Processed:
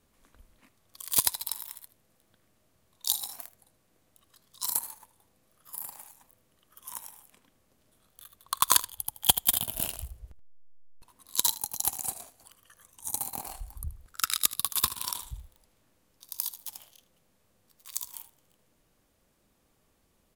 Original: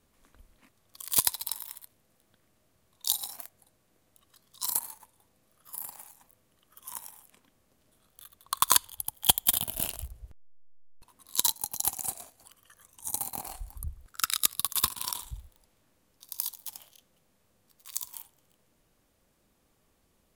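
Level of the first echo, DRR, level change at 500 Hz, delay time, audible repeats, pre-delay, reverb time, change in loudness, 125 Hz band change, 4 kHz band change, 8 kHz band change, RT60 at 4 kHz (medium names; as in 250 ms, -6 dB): -16.5 dB, no reverb, 0.0 dB, 78 ms, 1, no reverb, no reverb, 0.0 dB, 0.0 dB, 0.0 dB, 0.0 dB, no reverb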